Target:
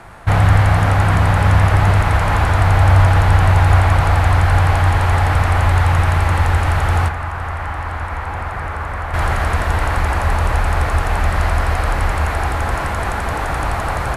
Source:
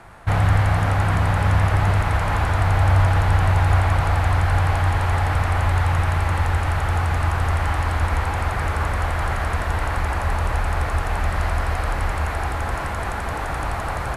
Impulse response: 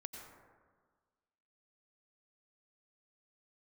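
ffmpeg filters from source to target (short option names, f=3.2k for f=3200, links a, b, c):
-filter_complex "[0:a]asettb=1/sr,asplit=3[a][b][c];[a]atrim=end=7.084[d];[b]atrim=start=7.08:end=9.14,asetpts=PTS-STARTPTS,afade=t=in:d=0.004:c=qsin,afade=t=out:st=2.056:d=0.004:c=qsin,acrossover=split=660|2300[e][f][g];[e]acompressor=threshold=-30dB:ratio=4[h];[f]acompressor=threshold=-31dB:ratio=4[i];[g]acompressor=threshold=-54dB:ratio=4[j];[h][i][j]amix=inputs=3:normalize=0[k];[c]atrim=start=9.136[l];[d][k]acrossfade=d=0.004:c1=hsin:c2=qsin[m];[m][l]acrossfade=d=0.004:c1=qsin:c2=hsin,volume=5.5dB"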